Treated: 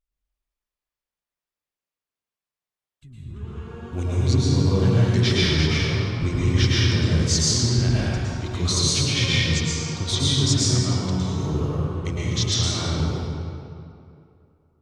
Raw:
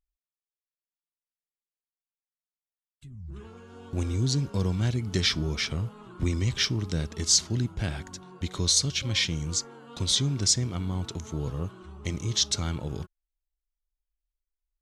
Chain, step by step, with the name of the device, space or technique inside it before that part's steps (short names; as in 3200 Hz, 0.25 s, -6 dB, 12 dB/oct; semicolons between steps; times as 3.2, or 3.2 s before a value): swimming-pool hall (reverb RT60 2.6 s, pre-delay 0.104 s, DRR -8 dB; high shelf 5800 Hz -6.5 dB)